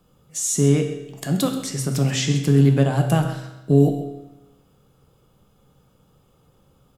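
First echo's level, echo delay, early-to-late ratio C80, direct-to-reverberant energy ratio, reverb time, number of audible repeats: −14.0 dB, 131 ms, 8.0 dB, 3.0 dB, 1.0 s, 1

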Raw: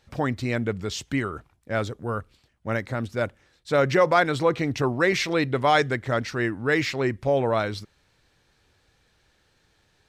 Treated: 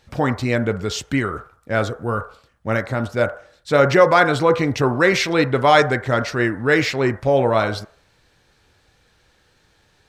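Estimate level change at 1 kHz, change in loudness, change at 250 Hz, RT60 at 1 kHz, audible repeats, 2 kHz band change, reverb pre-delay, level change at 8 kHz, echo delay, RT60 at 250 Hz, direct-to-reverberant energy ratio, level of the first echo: +6.0 dB, +6.0 dB, +5.5 dB, 0.50 s, no echo audible, +6.0 dB, 13 ms, +5.5 dB, no echo audible, 0.45 s, 8.0 dB, no echo audible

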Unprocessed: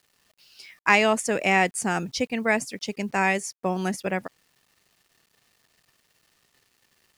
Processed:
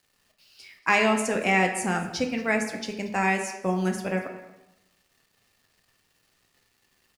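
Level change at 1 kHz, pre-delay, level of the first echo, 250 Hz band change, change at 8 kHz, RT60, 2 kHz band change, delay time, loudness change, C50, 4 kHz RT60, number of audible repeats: −1.5 dB, 4 ms, −19.5 dB, +0.5 dB, −2.5 dB, 0.90 s, −1.5 dB, 233 ms, −1.0 dB, 7.5 dB, 0.70 s, 1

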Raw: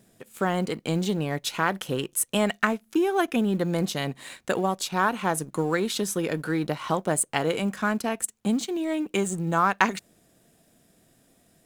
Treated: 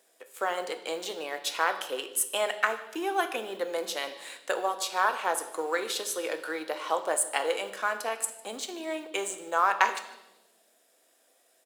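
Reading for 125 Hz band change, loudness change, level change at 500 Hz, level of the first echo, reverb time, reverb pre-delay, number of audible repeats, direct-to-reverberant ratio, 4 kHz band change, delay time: below −30 dB, −4.0 dB, −3.5 dB, −22.0 dB, 1.0 s, 4 ms, 1, 7.5 dB, −1.0 dB, 151 ms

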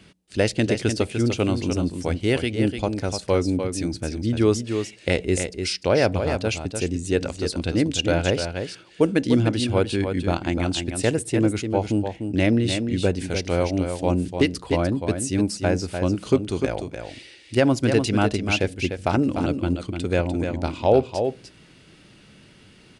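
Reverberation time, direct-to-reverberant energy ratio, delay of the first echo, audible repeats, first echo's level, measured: no reverb audible, no reverb audible, 298 ms, 1, −7.0 dB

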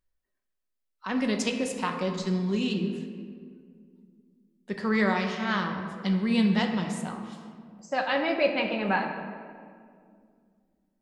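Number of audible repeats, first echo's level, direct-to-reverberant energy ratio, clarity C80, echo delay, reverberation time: no echo audible, no echo audible, 3.0 dB, 7.0 dB, no echo audible, 2.2 s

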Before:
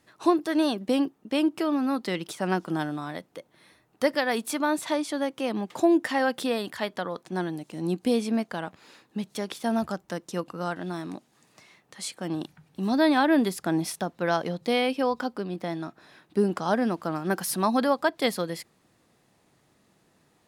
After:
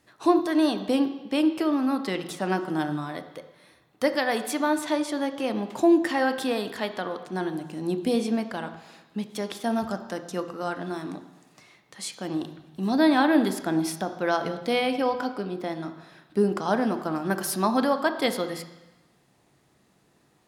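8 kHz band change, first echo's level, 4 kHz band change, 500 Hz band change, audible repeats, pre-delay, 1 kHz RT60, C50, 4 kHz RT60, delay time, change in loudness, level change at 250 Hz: 0.0 dB, no echo audible, +0.5 dB, +1.0 dB, no echo audible, 3 ms, 1.1 s, 10.5 dB, 1.1 s, no echo audible, +1.0 dB, +1.5 dB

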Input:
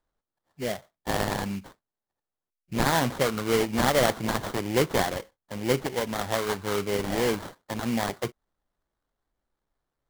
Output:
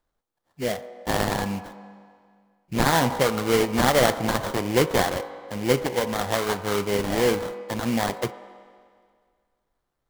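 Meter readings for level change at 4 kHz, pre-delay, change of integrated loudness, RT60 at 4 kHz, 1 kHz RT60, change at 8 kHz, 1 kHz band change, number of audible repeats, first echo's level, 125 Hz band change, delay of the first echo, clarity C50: +3.0 dB, 4 ms, +3.5 dB, 1.9 s, 2.0 s, +3.0 dB, +4.0 dB, no echo audible, no echo audible, +3.0 dB, no echo audible, 12.5 dB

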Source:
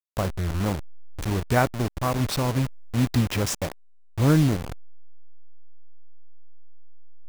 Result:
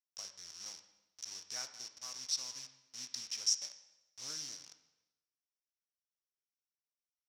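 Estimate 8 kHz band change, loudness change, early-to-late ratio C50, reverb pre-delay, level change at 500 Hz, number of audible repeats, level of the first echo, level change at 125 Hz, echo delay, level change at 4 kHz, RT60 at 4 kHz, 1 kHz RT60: −2.0 dB, −14.5 dB, 10.5 dB, 6 ms, −35.0 dB, no echo audible, no echo audible, below −40 dB, no echo audible, −3.5 dB, 0.95 s, 0.95 s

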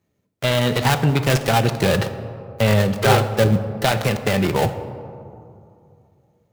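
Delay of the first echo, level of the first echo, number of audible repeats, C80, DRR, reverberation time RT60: no echo audible, no echo audible, no echo audible, 12.0 dB, 9.0 dB, 2.6 s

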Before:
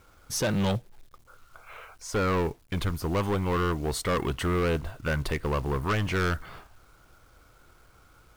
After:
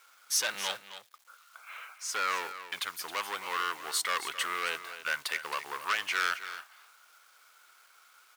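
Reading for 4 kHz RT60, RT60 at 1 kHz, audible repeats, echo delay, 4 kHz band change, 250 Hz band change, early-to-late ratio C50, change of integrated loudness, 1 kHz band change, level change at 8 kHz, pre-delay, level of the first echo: no reverb audible, no reverb audible, 1, 268 ms, +3.5 dB, −25.5 dB, no reverb audible, −4.0 dB, −1.5 dB, +3.5 dB, no reverb audible, −12.5 dB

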